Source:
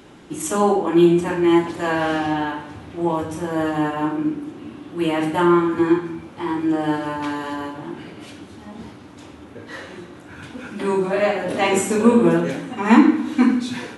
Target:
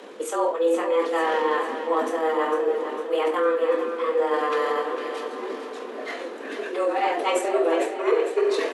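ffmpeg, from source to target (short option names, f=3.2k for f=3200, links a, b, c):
-af "atempo=1.6,highshelf=f=6.1k:g=-6,areverse,acompressor=threshold=-25dB:ratio=4,areverse,afreqshift=160,bandreject=f=60:t=h:w=6,bandreject=f=120:t=h:w=6,bandreject=f=180:t=h:w=6,bandreject=f=240:t=h:w=6,aecho=1:1:453|906|1359|1812|2265|2718:0.355|0.185|0.0959|0.0499|0.0259|0.0135,volume=4dB"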